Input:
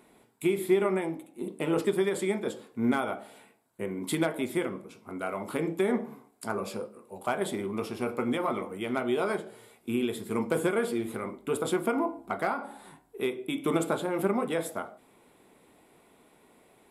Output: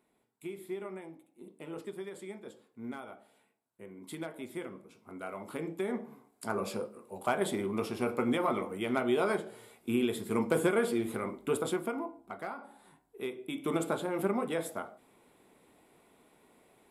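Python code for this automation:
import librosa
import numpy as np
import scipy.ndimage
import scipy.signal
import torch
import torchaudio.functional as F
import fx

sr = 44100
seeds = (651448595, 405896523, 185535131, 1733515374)

y = fx.gain(x, sr, db=fx.line((3.81, -15.0), (5.1, -7.5), (6.05, -7.5), (6.62, -0.5), (11.5, -0.5), (12.1, -10.5), (12.75, -10.5), (13.92, -3.5)))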